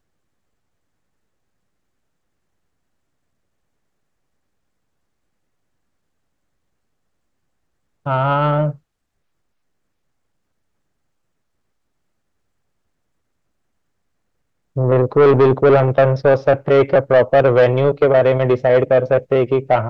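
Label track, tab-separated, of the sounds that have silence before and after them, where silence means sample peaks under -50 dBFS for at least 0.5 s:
8.060000	8.780000	sound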